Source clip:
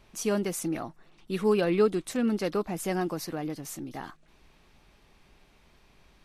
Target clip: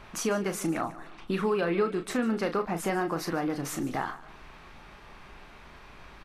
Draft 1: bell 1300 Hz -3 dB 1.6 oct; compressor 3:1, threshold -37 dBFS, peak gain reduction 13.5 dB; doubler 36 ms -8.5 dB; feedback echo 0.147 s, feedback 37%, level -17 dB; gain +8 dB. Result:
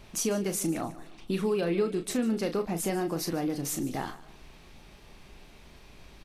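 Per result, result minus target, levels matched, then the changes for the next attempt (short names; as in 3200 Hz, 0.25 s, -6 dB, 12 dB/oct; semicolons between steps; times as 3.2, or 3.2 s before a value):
1000 Hz band -5.0 dB; 8000 Hz band +5.0 dB
change: bell 1300 Hz +8.5 dB 1.6 oct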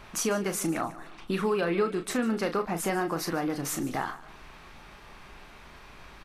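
8000 Hz band +4.0 dB
add after compressor: high shelf 5200 Hz -6.5 dB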